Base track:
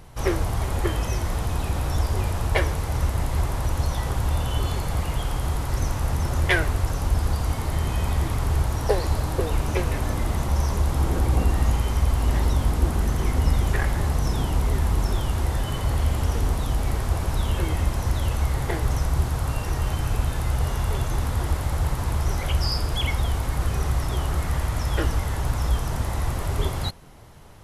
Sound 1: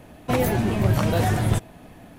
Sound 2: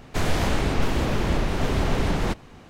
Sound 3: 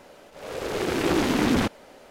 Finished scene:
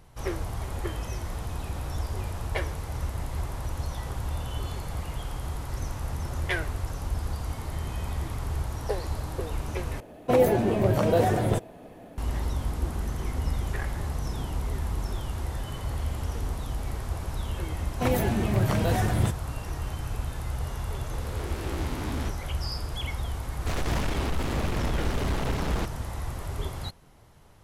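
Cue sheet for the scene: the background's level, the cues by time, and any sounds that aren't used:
base track -8 dB
10 replace with 1 -6 dB + bell 490 Hz +11 dB 1.4 oct
17.72 add 1 -4 dB + HPF 47 Hz
20.63 add 3 -15.5 dB + spectral swells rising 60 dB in 0.81 s
23.52 add 2 -13.5 dB + sample leveller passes 3

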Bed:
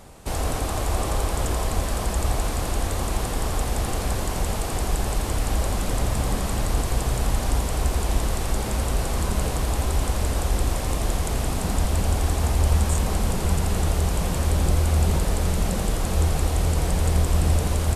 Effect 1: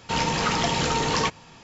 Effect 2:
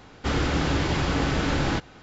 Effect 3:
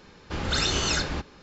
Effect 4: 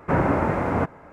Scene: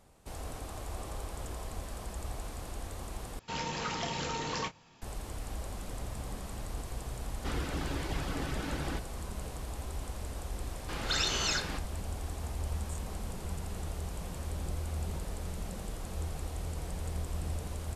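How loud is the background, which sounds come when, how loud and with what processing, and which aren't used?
bed -16 dB
3.39 replace with 1 -12 dB + doubler 28 ms -11 dB
7.2 add 2 -11 dB + reverb removal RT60 0.58 s
10.58 add 3 -4.5 dB + low shelf 370 Hz -9.5 dB
not used: 4

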